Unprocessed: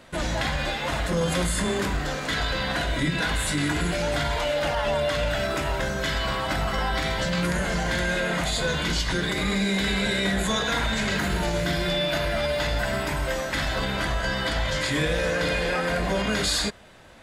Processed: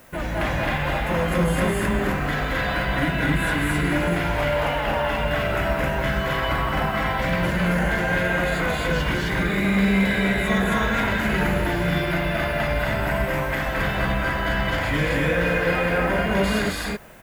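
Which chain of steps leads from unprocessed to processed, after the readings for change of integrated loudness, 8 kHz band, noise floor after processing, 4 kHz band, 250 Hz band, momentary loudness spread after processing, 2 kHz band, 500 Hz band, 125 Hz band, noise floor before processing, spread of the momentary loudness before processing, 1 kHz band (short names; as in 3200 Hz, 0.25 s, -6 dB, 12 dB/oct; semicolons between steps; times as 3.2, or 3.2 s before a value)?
+2.5 dB, -6.5 dB, -26 dBFS, -4.0 dB, +4.5 dB, 3 LU, +4.0 dB, +2.5 dB, +4.0 dB, -30 dBFS, 3 LU, +4.0 dB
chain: band shelf 5700 Hz -12 dB; loudspeakers at several distances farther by 75 m -3 dB, 91 m 0 dB; added noise blue -55 dBFS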